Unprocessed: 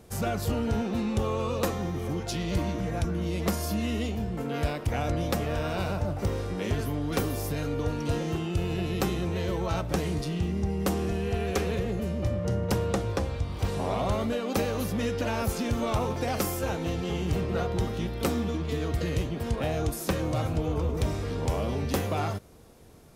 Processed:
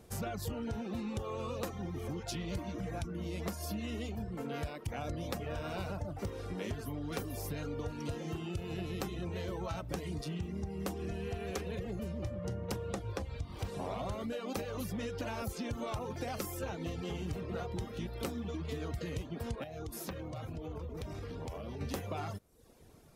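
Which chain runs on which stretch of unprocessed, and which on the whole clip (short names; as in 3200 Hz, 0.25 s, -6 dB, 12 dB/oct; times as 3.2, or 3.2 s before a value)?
19.63–21.81 bell 8300 Hz -4.5 dB 0.75 oct + compressor 16:1, threshold -31 dBFS
whole clip: reverb removal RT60 0.64 s; compressor, threshold -30 dBFS; gain -4.5 dB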